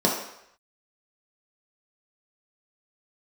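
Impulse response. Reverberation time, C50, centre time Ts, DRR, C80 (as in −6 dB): 0.75 s, 4.0 dB, 40 ms, −3.0 dB, 7.0 dB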